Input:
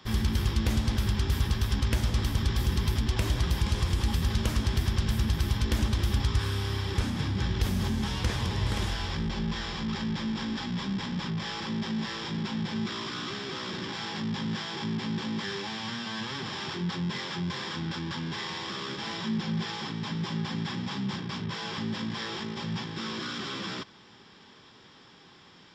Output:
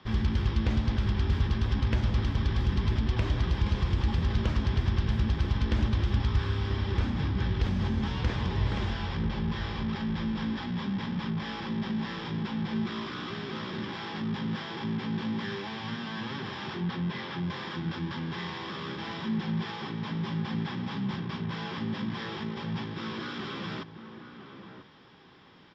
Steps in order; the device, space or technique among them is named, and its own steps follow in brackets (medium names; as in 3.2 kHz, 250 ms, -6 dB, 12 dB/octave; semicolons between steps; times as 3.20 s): shout across a valley (distance through air 200 m; echo from a far wall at 170 m, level -9 dB); 16.80–17.43 s: low-pass 5.8 kHz 12 dB/octave